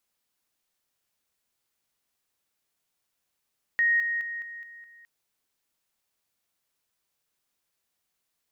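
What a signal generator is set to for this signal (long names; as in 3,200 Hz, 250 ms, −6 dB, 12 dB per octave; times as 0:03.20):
level staircase 1,870 Hz −19.5 dBFS, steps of −6 dB, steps 6, 0.21 s 0.00 s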